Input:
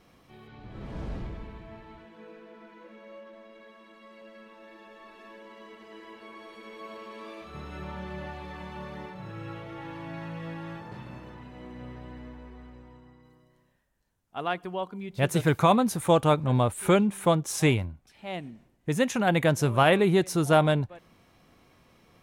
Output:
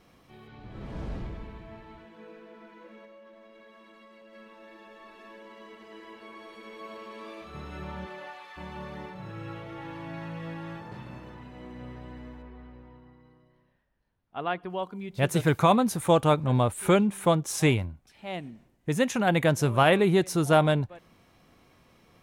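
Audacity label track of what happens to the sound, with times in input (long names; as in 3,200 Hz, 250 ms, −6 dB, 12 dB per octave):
3.050000	4.330000	downward compressor 4 to 1, threshold −49 dBFS
8.050000	8.560000	high-pass filter 300 Hz → 1,200 Hz
12.420000	14.700000	moving average over 6 samples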